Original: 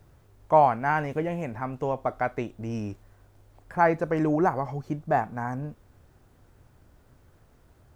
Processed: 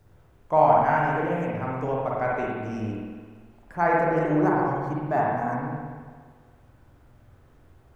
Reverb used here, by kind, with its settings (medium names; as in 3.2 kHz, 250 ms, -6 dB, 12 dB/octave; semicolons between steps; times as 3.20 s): spring tank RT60 1.6 s, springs 46/56 ms, chirp 70 ms, DRR -4.5 dB; trim -3.5 dB